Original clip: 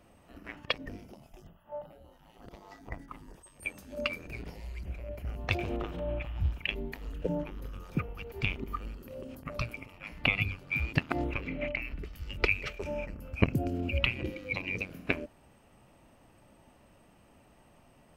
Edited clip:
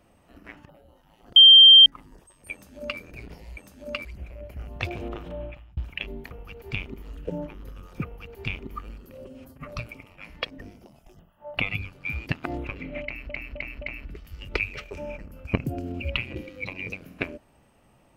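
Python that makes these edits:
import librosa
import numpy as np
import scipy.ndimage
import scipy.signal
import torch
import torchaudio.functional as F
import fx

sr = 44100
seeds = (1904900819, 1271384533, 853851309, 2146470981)

y = fx.edit(x, sr, fx.move(start_s=0.69, length_s=1.16, to_s=10.24),
    fx.bleep(start_s=2.52, length_s=0.5, hz=3160.0, db=-7.0),
    fx.duplicate(start_s=3.68, length_s=0.48, to_s=4.73),
    fx.fade_out_span(start_s=6.03, length_s=0.42),
    fx.duplicate(start_s=8.01, length_s=0.71, to_s=6.99),
    fx.stretch_span(start_s=9.22, length_s=0.29, factor=1.5),
    fx.repeat(start_s=11.7, length_s=0.26, count=4), tone=tone)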